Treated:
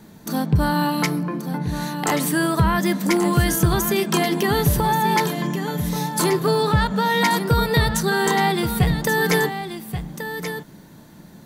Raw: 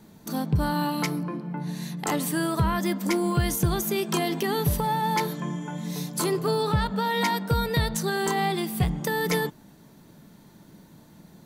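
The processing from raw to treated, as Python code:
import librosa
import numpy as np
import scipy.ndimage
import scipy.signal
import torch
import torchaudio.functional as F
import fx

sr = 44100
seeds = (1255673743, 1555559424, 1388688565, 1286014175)

p1 = fx.peak_eq(x, sr, hz=1700.0, db=3.5, octaves=0.38)
p2 = p1 + fx.echo_single(p1, sr, ms=1131, db=-9.5, dry=0)
y = p2 * librosa.db_to_amplitude(5.5)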